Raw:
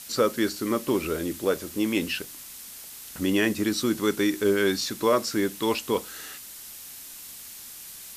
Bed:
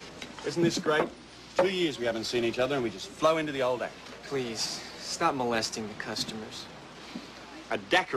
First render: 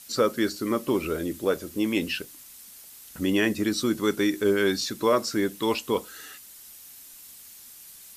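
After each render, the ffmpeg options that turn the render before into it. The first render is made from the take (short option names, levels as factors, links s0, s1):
-af "afftdn=nr=7:nf=-43"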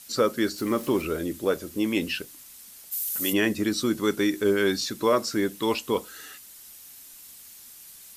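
-filter_complex "[0:a]asettb=1/sr,asplit=3[s0][s1][s2];[s0]atrim=end=0.584[s3];[s1]atrim=start=0.58:end=1.02,asetpts=PTS-STARTPTS,afade=t=in:d=0.004:c=qsin,afade=t=out:st=0.436:d=0.004:c=qsin,aeval=exprs='val(0)+0.5*0.0106*sgn(val(0))':c=same[s4];[s2]atrim=start=1.016[s5];[s3][s4]acrossfade=d=0.004:c1=hsin:c2=qsin[s6];[s6][s5]acrossfade=d=0.004:c1=qsin:c2=hsin,asplit=3[s7][s8][s9];[s7]afade=t=out:st=2.91:d=0.02[s10];[s8]aemphasis=mode=production:type=riaa,afade=t=in:st=2.91:d=0.02,afade=t=out:st=3.32:d=0.02[s11];[s9]afade=t=in:st=3.32:d=0.02[s12];[s10][s11][s12]amix=inputs=3:normalize=0"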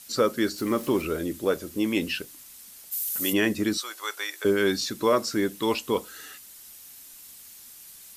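-filter_complex "[0:a]asettb=1/sr,asplit=3[s0][s1][s2];[s0]atrim=end=3.774[s3];[s1]atrim=start=3.77:end=4.45,asetpts=PTS-STARTPTS,afade=t=in:d=0.004:c=qsin,afade=t=out:st=0.676:d=0.004:c=qsin,highpass=f=690:w=0.5412,highpass=f=690:w=1.3066[s4];[s2]atrim=start=4.446[s5];[s3][s4]acrossfade=d=0.004:c1=hsin:c2=qsin[s6];[s6][s5]acrossfade=d=0.004:c1=qsin:c2=hsin"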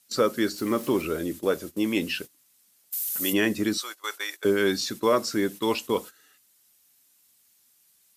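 -af "agate=range=0.158:threshold=0.0158:ratio=16:detection=peak,highpass=83"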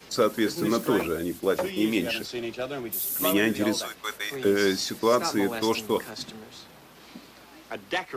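-filter_complex "[1:a]volume=0.596[s0];[0:a][s0]amix=inputs=2:normalize=0"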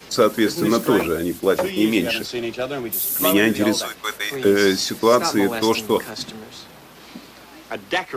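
-af "volume=2.11"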